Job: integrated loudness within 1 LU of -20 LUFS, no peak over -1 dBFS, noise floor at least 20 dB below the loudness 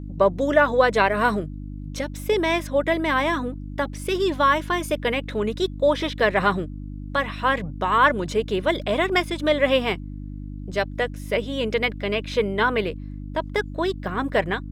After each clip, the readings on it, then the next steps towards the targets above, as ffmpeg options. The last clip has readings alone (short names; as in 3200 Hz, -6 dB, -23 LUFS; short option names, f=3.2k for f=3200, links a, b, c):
hum 50 Hz; harmonics up to 300 Hz; hum level -31 dBFS; loudness -23.0 LUFS; peak -4.0 dBFS; loudness target -20.0 LUFS
-> -af "bandreject=f=50:t=h:w=4,bandreject=f=100:t=h:w=4,bandreject=f=150:t=h:w=4,bandreject=f=200:t=h:w=4,bandreject=f=250:t=h:w=4,bandreject=f=300:t=h:w=4"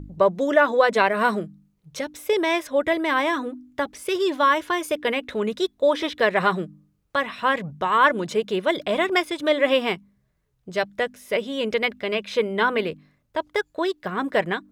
hum none; loudness -23.0 LUFS; peak -4.5 dBFS; loudness target -20.0 LUFS
-> -af "volume=3dB"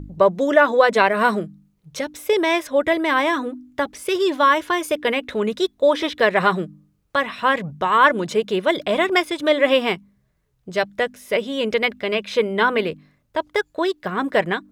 loudness -20.0 LUFS; peak -1.5 dBFS; noise floor -66 dBFS